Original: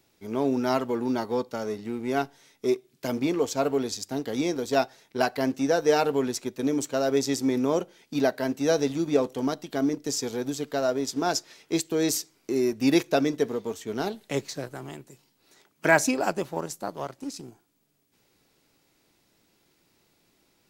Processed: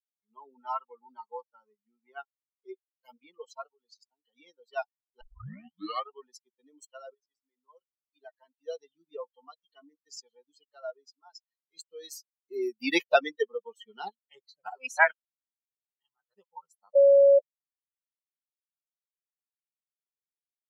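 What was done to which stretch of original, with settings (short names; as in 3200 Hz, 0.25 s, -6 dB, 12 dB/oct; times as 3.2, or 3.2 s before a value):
3.66–4.36 compressor 3:1, threshold -30 dBFS
5.21 tape start 0.93 s
7.14–9.24 fade in, from -15 dB
11.04–11.77 compressor 2:1, threshold -32 dBFS
12.51–14.1 gain +6.5 dB
14.62–16.34 reverse
16.95–17.39 bleep 558 Hz -11.5 dBFS
whole clip: per-bin expansion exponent 3; three-band isolator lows -23 dB, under 580 Hz, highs -17 dB, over 3500 Hz; gain +4 dB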